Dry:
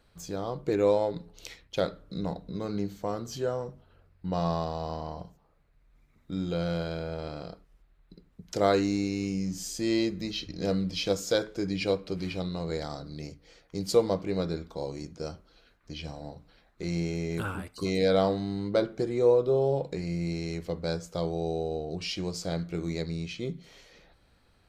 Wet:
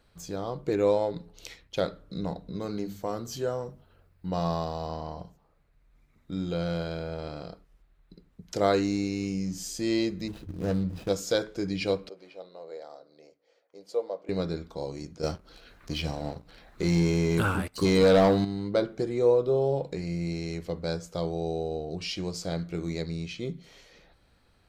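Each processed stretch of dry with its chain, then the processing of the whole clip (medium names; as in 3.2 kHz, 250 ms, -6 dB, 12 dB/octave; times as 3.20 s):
2.61–4.87 s: treble shelf 10 kHz +9 dB + hum notches 50/100/150/200 Hz
10.28–11.09 s: median filter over 41 samples + peaking EQ 81 Hz +8 dB 0.81 oct
12.09–14.29 s: band-pass filter 540 Hz, Q 2.4 + tilt EQ +4.5 dB/octave
15.23–18.45 s: waveshaping leveller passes 2 + upward compressor, threshold -38 dBFS
whole clip: none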